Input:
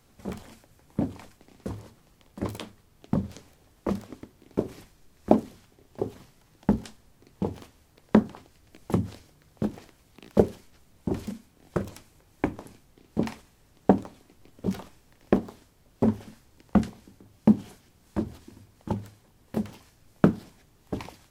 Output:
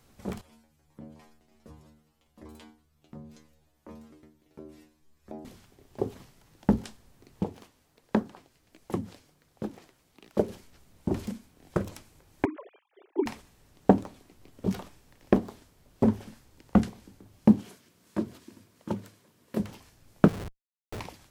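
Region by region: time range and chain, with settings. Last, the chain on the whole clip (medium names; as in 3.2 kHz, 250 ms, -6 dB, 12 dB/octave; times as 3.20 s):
0.41–5.45 s: inharmonic resonator 75 Hz, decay 0.46 s, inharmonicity 0.002 + compression 2:1, threshold -47 dBFS
7.44–10.49 s: flange 1.4 Hz, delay 1.1 ms, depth 7.2 ms, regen +68% + bass shelf 110 Hz -8.5 dB
12.45–13.26 s: formants replaced by sine waves + high-pass 270 Hz 24 dB/octave
17.60–19.60 s: high-pass 160 Hz + band-stop 800 Hz, Q 5
20.28–21.00 s: high-order bell 2.1 kHz -9 dB 1.3 oct + comb 2 ms, depth 72% + Schmitt trigger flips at -44 dBFS
whole clip: none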